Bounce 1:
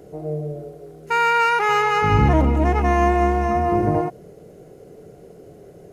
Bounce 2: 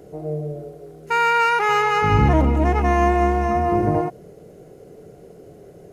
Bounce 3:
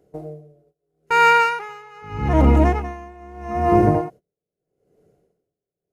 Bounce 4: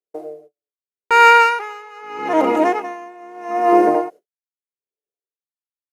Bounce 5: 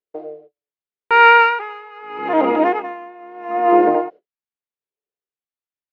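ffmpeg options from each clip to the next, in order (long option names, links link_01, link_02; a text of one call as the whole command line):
ffmpeg -i in.wav -af anull out.wav
ffmpeg -i in.wav -af "agate=range=-21dB:threshold=-34dB:ratio=16:detection=peak,aeval=exprs='val(0)*pow(10,-29*(0.5-0.5*cos(2*PI*0.79*n/s))/20)':channel_layout=same,volume=5dB" out.wav
ffmpeg -i in.wav -af "highpass=frequency=330:width=0.5412,highpass=frequency=330:width=1.3066,agate=range=-42dB:threshold=-47dB:ratio=16:detection=peak,volume=4.5dB" out.wav
ffmpeg -i in.wav -af "lowpass=frequency=3600:width=0.5412,lowpass=frequency=3600:width=1.3066" out.wav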